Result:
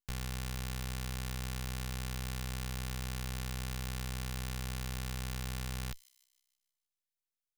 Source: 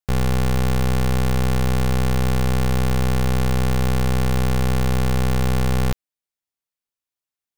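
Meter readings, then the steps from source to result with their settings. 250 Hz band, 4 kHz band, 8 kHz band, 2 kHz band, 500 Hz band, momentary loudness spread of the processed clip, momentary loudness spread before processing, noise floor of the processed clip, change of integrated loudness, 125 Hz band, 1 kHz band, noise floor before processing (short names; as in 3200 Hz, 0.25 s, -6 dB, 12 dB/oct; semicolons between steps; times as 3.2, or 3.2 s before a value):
-21.5 dB, -11.5 dB, -10.0 dB, -14.5 dB, -24.5 dB, 0 LU, 0 LU, under -85 dBFS, -18.0 dB, -19.0 dB, -19.5 dB, under -85 dBFS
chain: passive tone stack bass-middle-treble 5-5-5; limiter -23.5 dBFS, peak gain reduction 4 dB; on a send: thin delay 0.156 s, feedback 50%, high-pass 4400 Hz, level -16 dB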